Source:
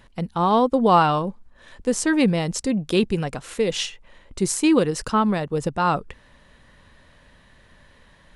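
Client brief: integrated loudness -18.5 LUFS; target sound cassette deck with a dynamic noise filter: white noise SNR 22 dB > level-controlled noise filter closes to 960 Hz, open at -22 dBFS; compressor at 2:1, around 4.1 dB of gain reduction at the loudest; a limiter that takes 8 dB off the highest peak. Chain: compression 2:1, threshold -20 dBFS; peak limiter -17 dBFS; white noise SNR 22 dB; level-controlled noise filter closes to 960 Hz, open at -22 dBFS; trim +8.5 dB

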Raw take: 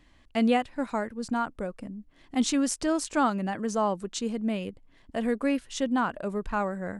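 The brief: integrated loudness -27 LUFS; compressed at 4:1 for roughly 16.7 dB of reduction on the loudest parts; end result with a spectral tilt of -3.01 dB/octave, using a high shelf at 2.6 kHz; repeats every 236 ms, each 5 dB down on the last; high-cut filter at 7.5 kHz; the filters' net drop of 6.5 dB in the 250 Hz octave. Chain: low-pass 7.5 kHz; peaking EQ 250 Hz -7.5 dB; treble shelf 2.6 kHz +6 dB; compression 4:1, threshold -42 dBFS; feedback delay 236 ms, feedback 56%, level -5 dB; trim +15.5 dB

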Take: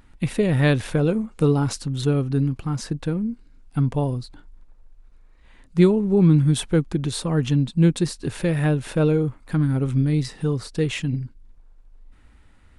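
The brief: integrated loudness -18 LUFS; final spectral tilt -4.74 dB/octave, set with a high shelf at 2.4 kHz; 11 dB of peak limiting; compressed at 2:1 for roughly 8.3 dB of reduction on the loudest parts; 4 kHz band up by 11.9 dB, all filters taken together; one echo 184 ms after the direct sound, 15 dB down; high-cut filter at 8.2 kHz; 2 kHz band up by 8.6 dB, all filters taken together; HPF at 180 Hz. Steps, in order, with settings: high-pass 180 Hz; low-pass 8.2 kHz; peaking EQ 2 kHz +6 dB; treble shelf 2.4 kHz +5.5 dB; peaking EQ 4 kHz +8 dB; compression 2:1, threshold -25 dBFS; peak limiter -18 dBFS; delay 184 ms -15 dB; trim +11 dB

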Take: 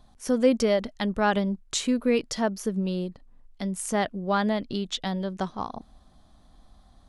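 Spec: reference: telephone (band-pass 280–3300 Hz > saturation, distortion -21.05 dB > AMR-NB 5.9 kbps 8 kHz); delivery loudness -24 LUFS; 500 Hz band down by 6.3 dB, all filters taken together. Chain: band-pass 280–3300 Hz; peaking EQ 500 Hz -7 dB; saturation -16 dBFS; trim +10 dB; AMR-NB 5.9 kbps 8 kHz

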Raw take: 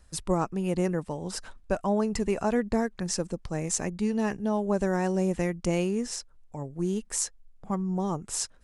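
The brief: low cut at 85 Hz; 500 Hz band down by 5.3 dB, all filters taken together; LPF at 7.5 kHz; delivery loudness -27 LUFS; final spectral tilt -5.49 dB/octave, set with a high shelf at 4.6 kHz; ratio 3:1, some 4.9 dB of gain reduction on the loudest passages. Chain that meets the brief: high-pass 85 Hz; low-pass 7.5 kHz; peaking EQ 500 Hz -7 dB; treble shelf 4.6 kHz -8 dB; compression 3:1, threshold -30 dBFS; trim +8.5 dB

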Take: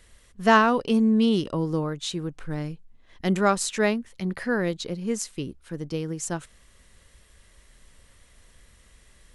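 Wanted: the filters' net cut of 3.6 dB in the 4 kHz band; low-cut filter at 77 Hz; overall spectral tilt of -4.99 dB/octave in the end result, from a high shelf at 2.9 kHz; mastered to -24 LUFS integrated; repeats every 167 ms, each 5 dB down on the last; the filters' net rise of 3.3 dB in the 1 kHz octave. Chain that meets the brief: high-pass 77 Hz; peaking EQ 1 kHz +4 dB; treble shelf 2.9 kHz +4 dB; peaking EQ 4 kHz -8.5 dB; feedback delay 167 ms, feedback 56%, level -5 dB; trim -1.5 dB

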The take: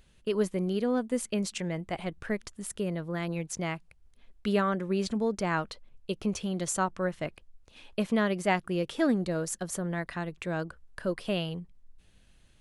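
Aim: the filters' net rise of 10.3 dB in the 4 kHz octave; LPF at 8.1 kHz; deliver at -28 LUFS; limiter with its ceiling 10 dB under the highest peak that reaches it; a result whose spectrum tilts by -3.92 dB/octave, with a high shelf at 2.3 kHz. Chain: low-pass 8.1 kHz; treble shelf 2.3 kHz +5.5 dB; peaking EQ 4 kHz +9 dB; trim +3 dB; peak limiter -15.5 dBFS

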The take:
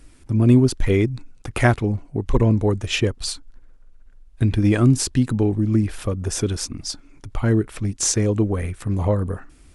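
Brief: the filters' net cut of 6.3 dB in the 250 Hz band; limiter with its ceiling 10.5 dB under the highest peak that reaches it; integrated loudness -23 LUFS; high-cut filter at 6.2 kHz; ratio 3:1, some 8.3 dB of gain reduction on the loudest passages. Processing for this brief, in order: low-pass 6.2 kHz; peaking EQ 250 Hz -8 dB; compression 3:1, threshold -24 dBFS; trim +9.5 dB; peak limiter -13 dBFS

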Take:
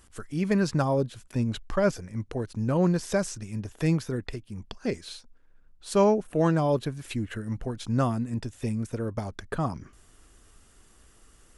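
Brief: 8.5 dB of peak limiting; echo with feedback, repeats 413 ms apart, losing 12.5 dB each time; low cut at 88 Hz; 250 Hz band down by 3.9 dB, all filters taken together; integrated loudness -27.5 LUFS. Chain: high-pass 88 Hz; peaking EQ 250 Hz -5.5 dB; peak limiter -20.5 dBFS; feedback delay 413 ms, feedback 24%, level -12.5 dB; trim +5 dB

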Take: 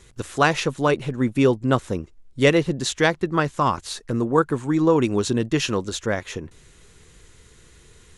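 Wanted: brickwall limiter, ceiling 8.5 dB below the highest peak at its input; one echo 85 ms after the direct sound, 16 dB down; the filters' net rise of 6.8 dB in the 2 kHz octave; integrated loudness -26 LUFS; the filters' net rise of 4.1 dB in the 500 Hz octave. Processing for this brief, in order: peaking EQ 500 Hz +4.5 dB; peaking EQ 2 kHz +8.5 dB; peak limiter -7.5 dBFS; delay 85 ms -16 dB; trim -5.5 dB

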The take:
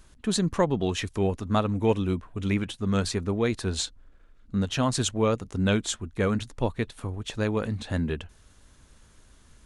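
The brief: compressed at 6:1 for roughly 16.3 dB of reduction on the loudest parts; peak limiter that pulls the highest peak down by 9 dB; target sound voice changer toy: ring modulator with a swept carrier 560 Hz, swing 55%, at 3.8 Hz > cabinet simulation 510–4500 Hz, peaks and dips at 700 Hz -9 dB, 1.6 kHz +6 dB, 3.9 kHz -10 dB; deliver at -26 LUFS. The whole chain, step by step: compression 6:1, threshold -37 dBFS; peak limiter -34 dBFS; ring modulator with a swept carrier 560 Hz, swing 55%, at 3.8 Hz; cabinet simulation 510–4500 Hz, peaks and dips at 700 Hz -9 dB, 1.6 kHz +6 dB, 3.9 kHz -10 dB; trim +24.5 dB

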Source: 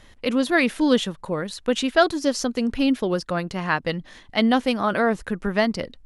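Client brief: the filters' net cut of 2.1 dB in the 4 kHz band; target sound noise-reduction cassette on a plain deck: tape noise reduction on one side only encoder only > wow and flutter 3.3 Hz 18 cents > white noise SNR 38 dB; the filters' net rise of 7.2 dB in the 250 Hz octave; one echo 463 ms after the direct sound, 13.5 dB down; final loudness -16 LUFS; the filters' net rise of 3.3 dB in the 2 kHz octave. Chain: peaking EQ 250 Hz +8 dB; peaking EQ 2 kHz +5 dB; peaking EQ 4 kHz -5 dB; delay 463 ms -13.5 dB; tape noise reduction on one side only encoder only; wow and flutter 3.3 Hz 18 cents; white noise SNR 38 dB; trim +1.5 dB

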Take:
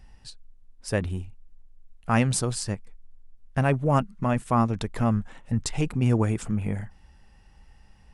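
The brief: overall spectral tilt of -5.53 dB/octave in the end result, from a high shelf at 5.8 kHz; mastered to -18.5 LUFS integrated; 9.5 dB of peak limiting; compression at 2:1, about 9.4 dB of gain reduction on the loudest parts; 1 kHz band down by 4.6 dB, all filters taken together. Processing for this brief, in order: peaking EQ 1 kHz -6 dB; treble shelf 5.8 kHz -3.5 dB; compression 2:1, threshold -35 dBFS; trim +21.5 dB; peak limiter -6.5 dBFS

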